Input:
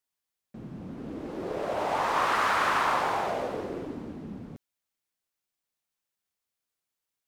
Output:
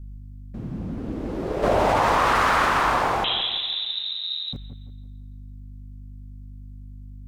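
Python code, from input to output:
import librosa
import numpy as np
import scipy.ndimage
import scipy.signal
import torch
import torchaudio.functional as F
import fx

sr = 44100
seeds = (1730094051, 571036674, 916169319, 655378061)

y = fx.add_hum(x, sr, base_hz=50, snr_db=19)
y = fx.low_shelf(y, sr, hz=130.0, db=12.0)
y = fx.freq_invert(y, sr, carrier_hz=3900, at=(3.24, 4.53))
y = fx.echo_wet_lowpass(y, sr, ms=168, feedback_pct=40, hz=1900.0, wet_db=-9.0)
y = fx.env_flatten(y, sr, amount_pct=100, at=(1.62, 2.64), fade=0.02)
y = y * librosa.db_to_amplitude(4.0)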